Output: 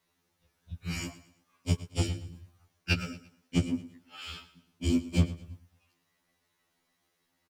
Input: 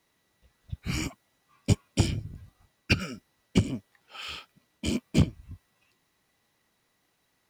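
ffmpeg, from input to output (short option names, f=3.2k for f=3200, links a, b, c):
-filter_complex "[0:a]asettb=1/sr,asplit=3[a][b][c];[a]atrim=end=3.734[d];[b]atrim=start=3.73:end=5.12,asetpts=PTS-STARTPTS,afade=t=in:d=0.004:c=qsin,afade=t=out:st=1.386:d=0.004:c=qsin,lowshelf=f=350:t=q:w=1.5:g=6.5[e];[c]atrim=start=5.116[f];[d][e]acrossfade=d=0.004:c1=hsin:c2=qsin[g];[g][f]acrossfade=d=0.004:c1=qsin:c2=hsin,aecho=1:1:114|228|342:0.158|0.0555|0.0194,afftfilt=real='re*2*eq(mod(b,4),0)':imag='im*2*eq(mod(b,4),0)':win_size=2048:overlap=0.75,volume=-1.5dB"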